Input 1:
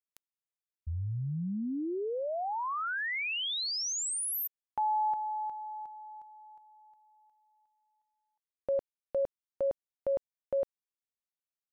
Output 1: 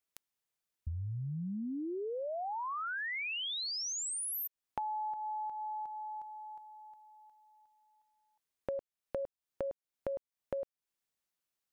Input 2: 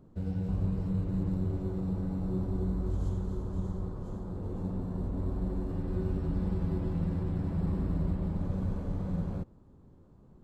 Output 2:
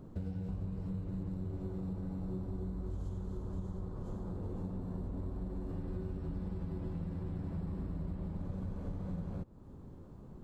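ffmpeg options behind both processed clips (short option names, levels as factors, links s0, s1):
-af "acompressor=threshold=0.00631:ratio=5:attack=28:release=261:knee=6:detection=rms,volume=2"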